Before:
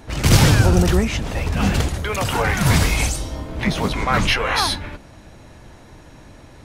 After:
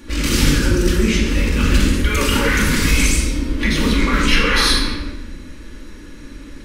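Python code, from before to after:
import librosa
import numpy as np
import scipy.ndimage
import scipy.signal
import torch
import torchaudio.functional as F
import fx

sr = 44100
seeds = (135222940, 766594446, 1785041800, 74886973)

p1 = fx.over_compress(x, sr, threshold_db=-19.0, ratio=-0.5)
p2 = x + (p1 * 10.0 ** (0.5 / 20.0))
p3 = fx.fixed_phaser(p2, sr, hz=300.0, stages=4)
p4 = fx.room_shoebox(p3, sr, seeds[0], volume_m3=790.0, walls='mixed', distance_m=2.4)
y = p4 * 10.0 ** (-5.5 / 20.0)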